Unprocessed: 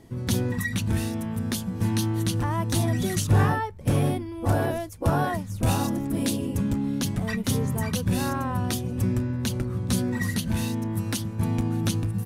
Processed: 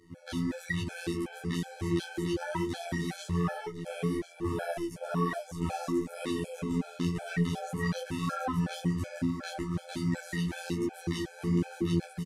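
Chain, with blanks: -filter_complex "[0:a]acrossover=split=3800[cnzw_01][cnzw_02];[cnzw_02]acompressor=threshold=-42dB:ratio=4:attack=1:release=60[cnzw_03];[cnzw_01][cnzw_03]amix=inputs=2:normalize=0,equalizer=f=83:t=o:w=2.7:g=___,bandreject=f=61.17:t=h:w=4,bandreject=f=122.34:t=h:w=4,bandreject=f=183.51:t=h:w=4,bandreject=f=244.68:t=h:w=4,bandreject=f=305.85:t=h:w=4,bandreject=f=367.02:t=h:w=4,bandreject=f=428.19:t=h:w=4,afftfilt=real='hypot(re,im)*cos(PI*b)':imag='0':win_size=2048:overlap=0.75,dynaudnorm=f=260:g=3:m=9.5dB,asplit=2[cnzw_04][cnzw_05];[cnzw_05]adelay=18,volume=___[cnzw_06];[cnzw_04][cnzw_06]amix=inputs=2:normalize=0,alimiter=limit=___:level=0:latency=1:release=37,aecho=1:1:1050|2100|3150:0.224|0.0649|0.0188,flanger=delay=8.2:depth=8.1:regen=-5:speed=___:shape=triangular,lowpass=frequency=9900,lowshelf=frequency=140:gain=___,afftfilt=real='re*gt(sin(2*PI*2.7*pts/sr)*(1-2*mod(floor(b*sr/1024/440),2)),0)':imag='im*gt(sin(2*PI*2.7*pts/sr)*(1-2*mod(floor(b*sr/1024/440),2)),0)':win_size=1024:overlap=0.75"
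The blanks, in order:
3.5, -3dB, -10.5dB, 1.1, -10.5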